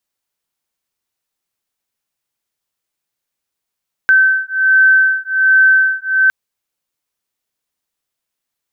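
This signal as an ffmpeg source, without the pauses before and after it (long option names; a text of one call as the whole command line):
ffmpeg -f lavfi -i "aevalsrc='0.266*(sin(2*PI*1540*t)+sin(2*PI*1541.3*t))':duration=2.21:sample_rate=44100" out.wav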